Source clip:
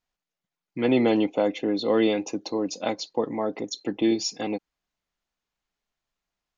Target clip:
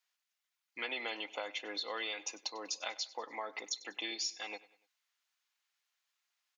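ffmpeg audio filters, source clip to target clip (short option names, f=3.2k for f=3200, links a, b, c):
-af "highpass=1.4k,acompressor=threshold=-41dB:ratio=4,aecho=1:1:97|194|291:0.106|0.0455|0.0196,volume=4dB"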